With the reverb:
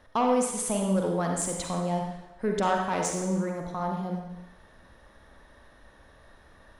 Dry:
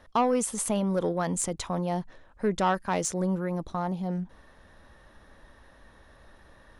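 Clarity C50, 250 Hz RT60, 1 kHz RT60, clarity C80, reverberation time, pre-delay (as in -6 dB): 2.5 dB, 0.85 s, 0.95 s, 5.0 dB, 0.95 s, 38 ms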